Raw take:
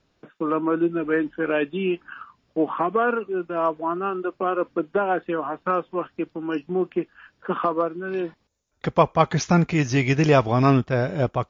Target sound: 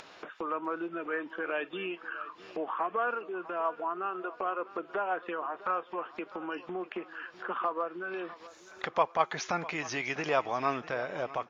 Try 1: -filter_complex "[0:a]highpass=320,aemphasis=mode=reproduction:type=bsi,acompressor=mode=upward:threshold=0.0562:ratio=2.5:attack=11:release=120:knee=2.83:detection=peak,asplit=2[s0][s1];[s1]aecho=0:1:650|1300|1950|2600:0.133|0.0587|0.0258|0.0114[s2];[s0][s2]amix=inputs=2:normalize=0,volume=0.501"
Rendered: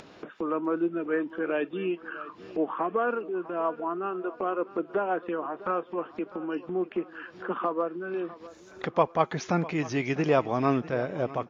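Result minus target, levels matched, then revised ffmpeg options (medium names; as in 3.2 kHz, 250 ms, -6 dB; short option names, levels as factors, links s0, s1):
250 Hz band +6.0 dB
-filter_complex "[0:a]highpass=760,aemphasis=mode=reproduction:type=bsi,acompressor=mode=upward:threshold=0.0562:ratio=2.5:attack=11:release=120:knee=2.83:detection=peak,asplit=2[s0][s1];[s1]aecho=0:1:650|1300|1950|2600:0.133|0.0587|0.0258|0.0114[s2];[s0][s2]amix=inputs=2:normalize=0,volume=0.501"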